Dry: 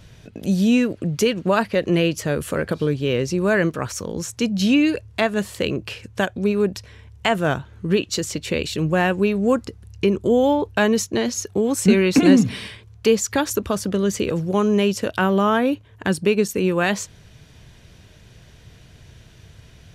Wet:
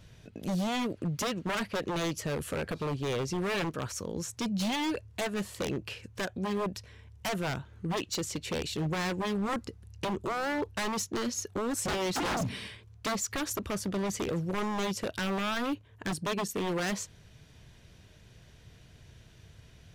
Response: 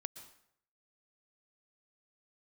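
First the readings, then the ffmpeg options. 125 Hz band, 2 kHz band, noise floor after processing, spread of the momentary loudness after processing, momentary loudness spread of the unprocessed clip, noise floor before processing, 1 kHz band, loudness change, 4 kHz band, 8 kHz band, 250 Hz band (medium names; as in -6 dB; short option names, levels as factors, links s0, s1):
-11.0 dB, -10.5 dB, -56 dBFS, 6 LU, 8 LU, -48 dBFS, -8.5 dB, -12.5 dB, -8.0 dB, -7.5 dB, -14.0 dB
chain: -af "aeval=exprs='0.133*(abs(mod(val(0)/0.133+3,4)-2)-1)':c=same,volume=0.398"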